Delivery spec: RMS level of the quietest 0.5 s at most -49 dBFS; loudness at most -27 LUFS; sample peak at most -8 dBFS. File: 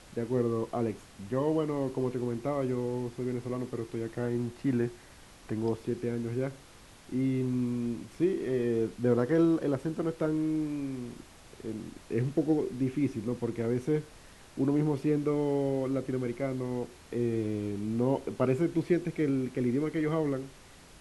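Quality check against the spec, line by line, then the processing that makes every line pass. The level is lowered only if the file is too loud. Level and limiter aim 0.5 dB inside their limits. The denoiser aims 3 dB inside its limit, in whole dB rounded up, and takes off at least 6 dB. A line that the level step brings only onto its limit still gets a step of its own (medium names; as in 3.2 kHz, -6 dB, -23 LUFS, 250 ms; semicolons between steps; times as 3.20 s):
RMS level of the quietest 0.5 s -53 dBFS: pass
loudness -31.0 LUFS: pass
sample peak -13.0 dBFS: pass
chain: none needed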